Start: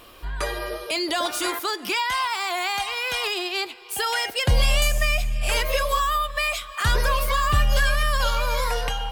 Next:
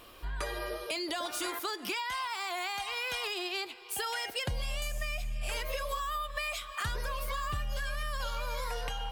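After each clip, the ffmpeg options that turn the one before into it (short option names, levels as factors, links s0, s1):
-af "acompressor=threshold=0.0501:ratio=6,volume=0.531"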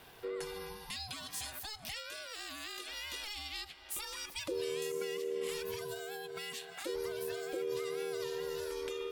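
-filter_complex "[0:a]acrossover=split=140|3000[s0][s1][s2];[s1]acompressor=threshold=0.00398:ratio=3[s3];[s0][s3][s2]amix=inputs=3:normalize=0,aeval=exprs='val(0)*sin(2*PI*430*n/s)':c=same"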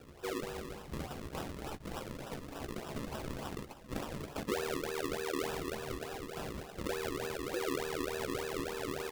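-filter_complex "[0:a]acrusher=samples=40:mix=1:aa=0.000001:lfo=1:lforange=40:lforate=3.4,asplit=2[s0][s1];[s1]adelay=14,volume=0.282[s2];[s0][s2]amix=inputs=2:normalize=0,volume=1.19"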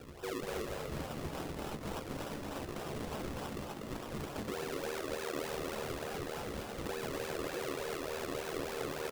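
-filter_complex "[0:a]alimiter=level_in=3.98:limit=0.0631:level=0:latency=1:release=439,volume=0.251,asplit=7[s0][s1][s2][s3][s4][s5][s6];[s1]adelay=243,afreqshift=74,volume=0.708[s7];[s2]adelay=486,afreqshift=148,volume=0.327[s8];[s3]adelay=729,afreqshift=222,volume=0.15[s9];[s4]adelay=972,afreqshift=296,volume=0.0692[s10];[s5]adelay=1215,afreqshift=370,volume=0.0316[s11];[s6]adelay=1458,afreqshift=444,volume=0.0146[s12];[s0][s7][s8][s9][s10][s11][s12]amix=inputs=7:normalize=0,volume=1.58"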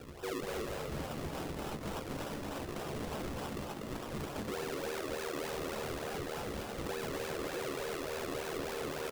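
-af "volume=53.1,asoftclip=hard,volume=0.0188,volume=1.19"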